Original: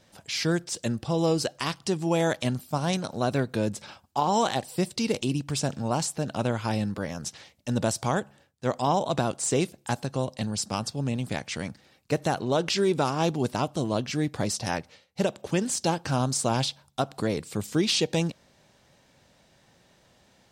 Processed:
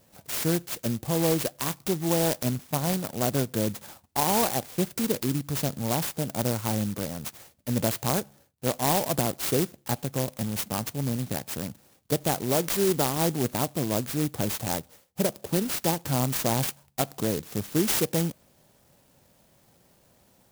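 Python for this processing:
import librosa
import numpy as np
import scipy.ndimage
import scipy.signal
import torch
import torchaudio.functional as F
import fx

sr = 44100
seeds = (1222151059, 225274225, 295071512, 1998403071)

y = fx.clock_jitter(x, sr, seeds[0], jitter_ms=0.14)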